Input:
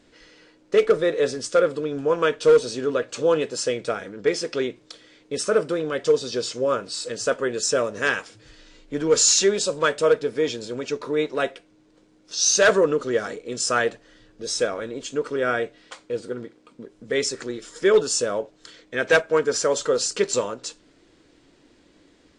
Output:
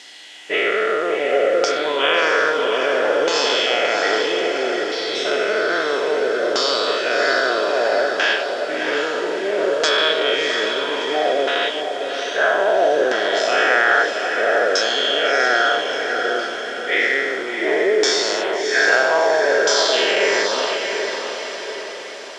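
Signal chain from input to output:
every bin's largest magnitude spread in time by 480 ms
downward compressor, threshold −10 dBFS, peak gain reduction 6 dB
auto-filter low-pass saw down 0.61 Hz 470–5,600 Hz
on a send: feedback delay with all-pass diffusion 677 ms, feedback 52%, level −5.5 dB
on the sum: background noise white −41 dBFS
loudspeaker in its box 370–7,700 Hz, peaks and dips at 490 Hz −9 dB, 750 Hz +7 dB, 1,200 Hz −7 dB, 2,000 Hz +4 dB, 3,200 Hz +8 dB
level −2.5 dB

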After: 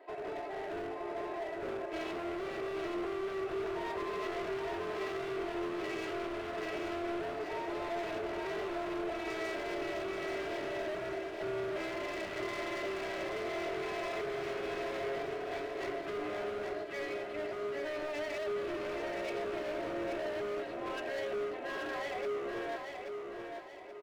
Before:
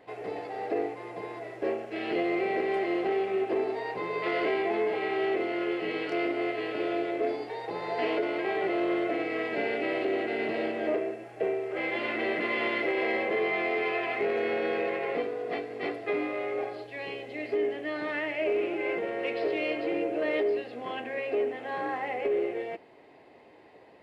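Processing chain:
Chebyshev high-pass filter 390 Hz, order 3
high-shelf EQ 2,400 Hz −11 dB
comb filter 3.1 ms, depth 92%
brickwall limiter −25.5 dBFS, peak gain reduction 9 dB
hard clipping −37 dBFS, distortion −8 dB
on a send: repeating echo 830 ms, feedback 40%, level −5 dB

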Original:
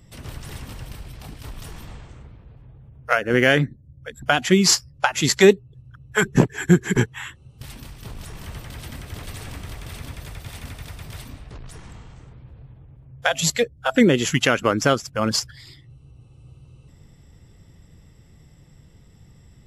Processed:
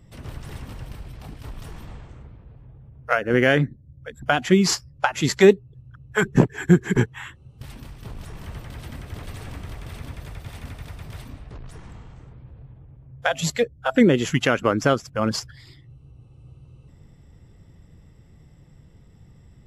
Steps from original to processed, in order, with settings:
high-shelf EQ 2,600 Hz −8 dB

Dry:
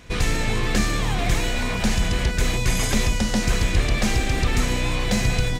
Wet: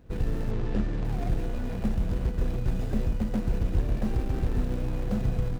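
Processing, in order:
running median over 41 samples
0:00.51–0:01.05: low-pass filter 5,800 Hz 12 dB per octave
level −5 dB

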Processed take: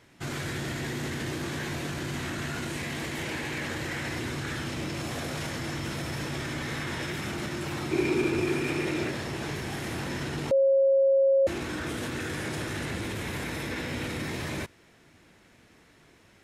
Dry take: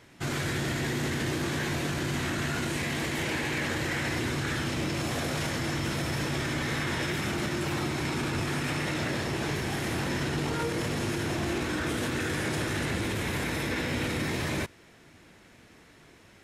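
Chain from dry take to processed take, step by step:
0:07.91–0:09.09: hollow resonant body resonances 370/2,400 Hz, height 17 dB → 12 dB, ringing for 35 ms
0:10.51–0:11.47: beep over 543 Hz −15 dBFS
level −3 dB

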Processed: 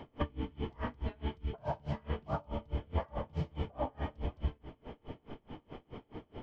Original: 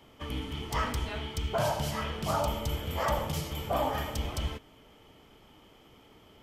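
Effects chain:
notch filter 1,300 Hz, Q 13
downward compressor 10 to 1, threshold −42 dBFS, peak gain reduction 17.5 dB
head-to-tape spacing loss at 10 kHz 42 dB
convolution reverb RT60 0.60 s, pre-delay 3 ms, DRR 13.5 dB
tremolo with a sine in dB 4.7 Hz, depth 31 dB
level +16 dB

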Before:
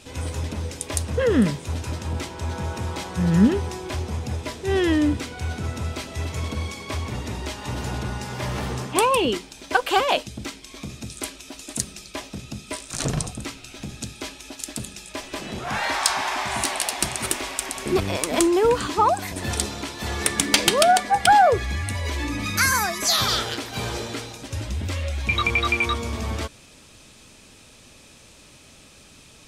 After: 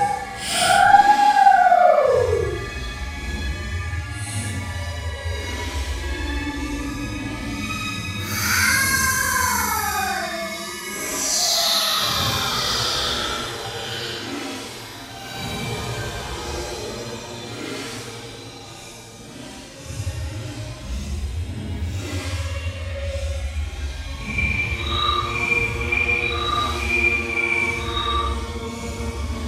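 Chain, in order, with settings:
pitch vibrato 1.3 Hz 23 cents
extreme stretch with random phases 5.9×, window 0.10 s, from 0:21.15

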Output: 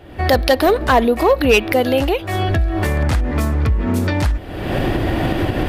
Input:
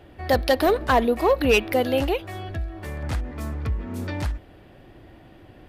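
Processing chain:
camcorder AGC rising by 48 dB per second
level +5.5 dB

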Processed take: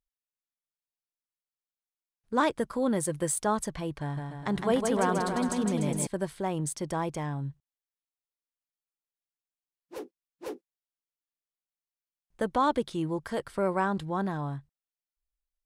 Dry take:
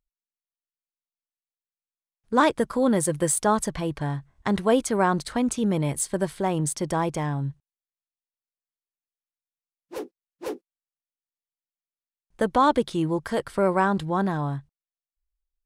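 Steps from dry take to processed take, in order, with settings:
0:04.00–0:06.07: bouncing-ball delay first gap 160 ms, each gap 0.85×, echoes 5
level −6 dB

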